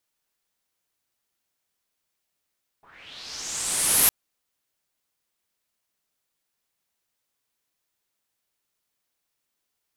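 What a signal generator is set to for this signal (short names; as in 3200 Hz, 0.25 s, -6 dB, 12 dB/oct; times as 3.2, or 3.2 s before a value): swept filtered noise white, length 1.26 s lowpass, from 830 Hz, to 12000 Hz, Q 3.7, linear, gain ramp +29.5 dB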